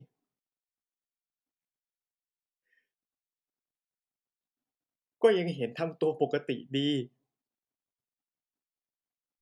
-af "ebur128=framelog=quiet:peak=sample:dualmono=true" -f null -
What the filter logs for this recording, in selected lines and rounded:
Integrated loudness:
  I:         -26.9 LUFS
  Threshold: -37.3 LUFS
Loudness range:
  LRA:         4.7 LU
  Threshold: -50.1 LUFS
  LRA low:   -33.2 LUFS
  LRA high:  -28.5 LUFS
Sample peak:
  Peak:      -11.1 dBFS